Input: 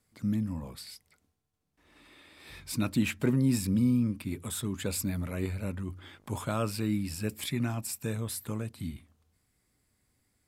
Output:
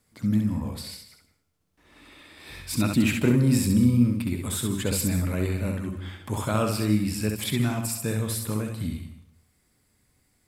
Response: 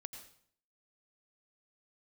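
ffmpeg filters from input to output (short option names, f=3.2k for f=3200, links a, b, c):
-filter_complex "[0:a]asplit=2[a][b];[1:a]atrim=start_sample=2205,adelay=66[c];[b][c]afir=irnorm=-1:irlink=0,volume=0.5dB[d];[a][d]amix=inputs=2:normalize=0,volume=5dB"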